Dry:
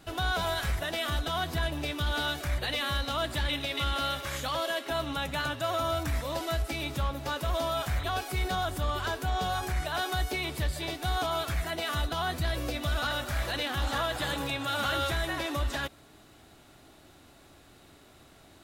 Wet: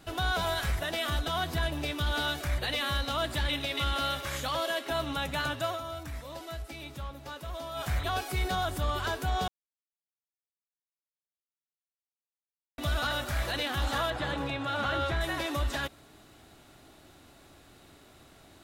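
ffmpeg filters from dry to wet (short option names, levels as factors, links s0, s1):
-filter_complex "[0:a]asettb=1/sr,asplit=3[s0][s1][s2];[s0]atrim=end=14.104[s3];[s1]atrim=start=14.1:end=15.21,asetpts=PTS-STARTPTS,afade=t=in:d=0.004:c=qsin,afade=t=out:st=1.106:d=0.004:c=qsin,aemphasis=mode=reproduction:type=75fm[s4];[s2]atrim=start=15.206[s5];[s3][s4]acrossfade=d=0.004:c1=hsin:c2=qsin[s6];[s6][s5]acrossfade=d=0.004:c1=qsin:c2=hsin,asplit=5[s7][s8][s9][s10][s11];[s7]atrim=end=5.8,asetpts=PTS-STARTPTS,afade=t=out:st=5.64:d=0.16:silence=0.354813[s12];[s8]atrim=start=5.8:end=7.73,asetpts=PTS-STARTPTS,volume=0.355[s13];[s9]atrim=start=7.73:end=9.48,asetpts=PTS-STARTPTS,afade=t=in:d=0.16:silence=0.354813,afade=t=out:st=1.746:d=0.004:c=hsin[s14];[s10]atrim=start=9.48:end=12.78,asetpts=PTS-STARTPTS,volume=0[s15];[s11]atrim=start=12.78,asetpts=PTS-STARTPTS,afade=t=in:d=0.004:c=hsin[s16];[s12][s13][s14][s15][s16]concat=n=5:v=0:a=1"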